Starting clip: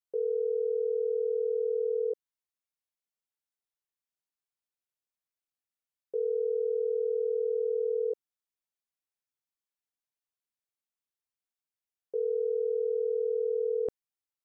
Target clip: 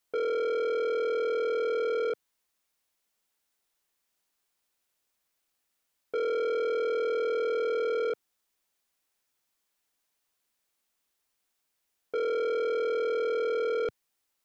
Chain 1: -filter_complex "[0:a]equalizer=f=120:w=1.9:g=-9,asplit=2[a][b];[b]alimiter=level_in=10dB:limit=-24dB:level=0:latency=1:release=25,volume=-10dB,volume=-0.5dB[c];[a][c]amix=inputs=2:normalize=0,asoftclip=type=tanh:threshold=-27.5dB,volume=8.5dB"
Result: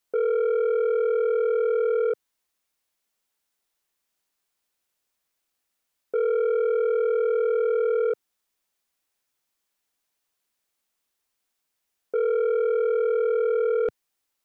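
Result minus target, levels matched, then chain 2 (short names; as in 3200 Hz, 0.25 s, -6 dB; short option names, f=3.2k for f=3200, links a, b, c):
soft clip: distortion -6 dB
-filter_complex "[0:a]equalizer=f=120:w=1.9:g=-9,asplit=2[a][b];[b]alimiter=level_in=10dB:limit=-24dB:level=0:latency=1:release=25,volume=-10dB,volume=-0.5dB[c];[a][c]amix=inputs=2:normalize=0,asoftclip=type=tanh:threshold=-35.5dB,volume=8.5dB"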